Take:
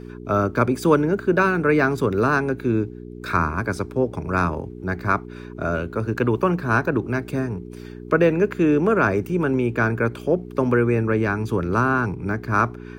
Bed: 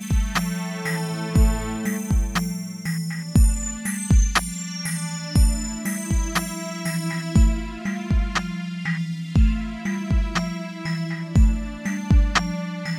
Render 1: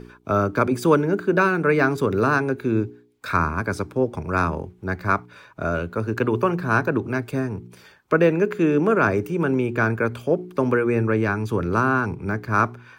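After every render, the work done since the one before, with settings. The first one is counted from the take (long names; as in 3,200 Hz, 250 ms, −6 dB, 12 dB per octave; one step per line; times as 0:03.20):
hum removal 60 Hz, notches 7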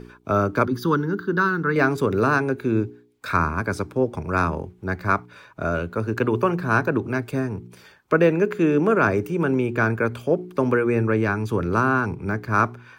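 0:00.65–0:01.76: phaser with its sweep stopped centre 2,400 Hz, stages 6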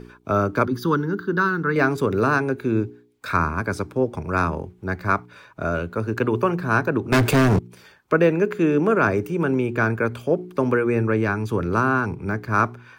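0:07.12–0:07.59: leveller curve on the samples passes 5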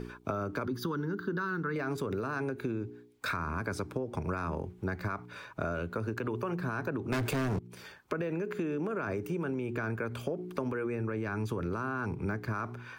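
brickwall limiter −16 dBFS, peak gain reduction 10.5 dB
downward compressor 10 to 1, threshold −30 dBFS, peak gain reduction 12 dB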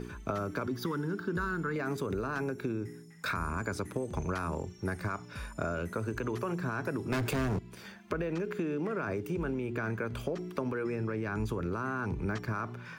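mix in bed −26.5 dB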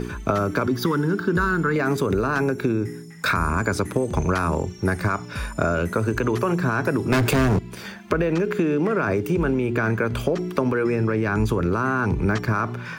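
level +12 dB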